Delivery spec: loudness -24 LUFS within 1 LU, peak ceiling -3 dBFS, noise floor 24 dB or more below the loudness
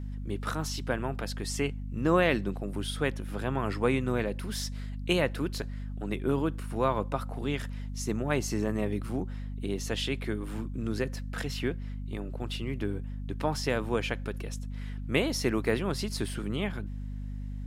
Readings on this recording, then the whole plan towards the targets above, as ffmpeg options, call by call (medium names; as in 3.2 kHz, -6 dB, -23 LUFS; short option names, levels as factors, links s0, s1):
hum 50 Hz; highest harmonic 250 Hz; hum level -34 dBFS; loudness -32.0 LUFS; peak level -10.0 dBFS; loudness target -24.0 LUFS
-> -af "bandreject=f=50:t=h:w=4,bandreject=f=100:t=h:w=4,bandreject=f=150:t=h:w=4,bandreject=f=200:t=h:w=4,bandreject=f=250:t=h:w=4"
-af "volume=2.51,alimiter=limit=0.708:level=0:latency=1"